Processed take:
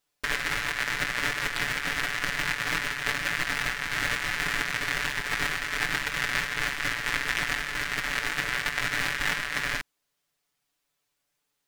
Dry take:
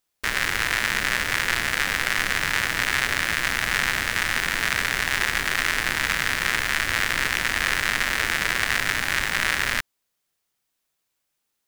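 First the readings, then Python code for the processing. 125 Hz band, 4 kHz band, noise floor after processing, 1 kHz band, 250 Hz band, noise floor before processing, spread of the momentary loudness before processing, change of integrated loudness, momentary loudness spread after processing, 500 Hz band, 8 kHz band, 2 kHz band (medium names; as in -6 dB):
-4.0 dB, -5.5 dB, -79 dBFS, -5.0 dB, -4.0 dB, -78 dBFS, 1 LU, -5.5 dB, 2 LU, -4.0 dB, -7.0 dB, -5.0 dB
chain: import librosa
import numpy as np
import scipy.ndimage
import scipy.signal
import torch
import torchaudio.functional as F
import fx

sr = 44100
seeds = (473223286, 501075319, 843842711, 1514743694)

y = fx.high_shelf(x, sr, hz=8800.0, db=-6.5)
y = fx.over_compress(y, sr, threshold_db=-27.0, ratio=-0.5)
y = y + 0.83 * np.pad(y, (int(6.9 * sr / 1000.0), 0))[:len(y)]
y = y * librosa.db_to_amplitude(-4.0)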